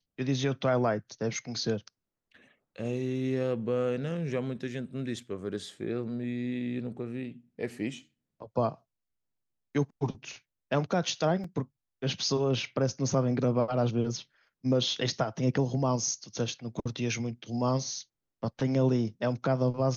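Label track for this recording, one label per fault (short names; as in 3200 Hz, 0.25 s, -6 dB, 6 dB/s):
11.440000	11.440000	gap 3.9 ms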